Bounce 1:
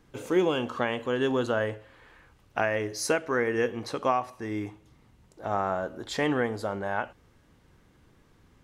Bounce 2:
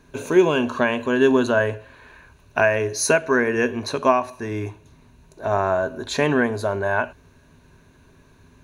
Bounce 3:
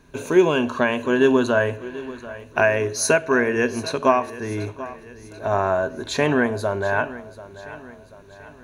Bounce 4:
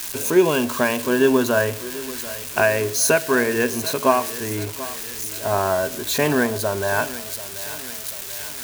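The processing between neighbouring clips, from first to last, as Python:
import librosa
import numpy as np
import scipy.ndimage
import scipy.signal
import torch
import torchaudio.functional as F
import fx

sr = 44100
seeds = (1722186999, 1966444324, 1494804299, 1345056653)

y1 = fx.ripple_eq(x, sr, per_octave=1.5, db=10)
y1 = F.gain(torch.from_numpy(y1), 6.5).numpy()
y2 = fx.echo_feedback(y1, sr, ms=737, feedback_pct=48, wet_db=-16.5)
y3 = y2 + 0.5 * 10.0 ** (-18.0 / 20.0) * np.diff(np.sign(y2), prepend=np.sign(y2[:1]))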